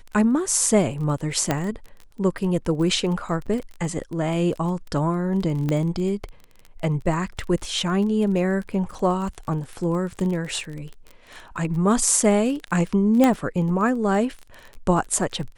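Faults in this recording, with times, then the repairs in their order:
crackle 26/s -30 dBFS
1.51 pop -7 dBFS
3.46–3.47 gap 6.3 ms
5.69 pop -13 dBFS
13.24 pop -6 dBFS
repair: de-click; interpolate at 3.46, 6.3 ms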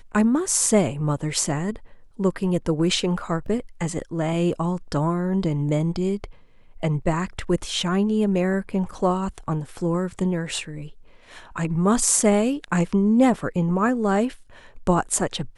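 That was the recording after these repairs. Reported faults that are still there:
5.69 pop
13.24 pop

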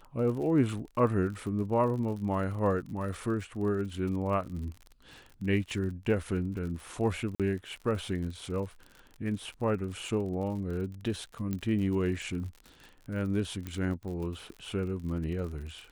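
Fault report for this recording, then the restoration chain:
crackle 59/s -39 dBFS
7.35–7.4 gap 47 ms
11.53 pop -20 dBFS
13.67 pop -23 dBFS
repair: de-click; interpolate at 7.35, 47 ms

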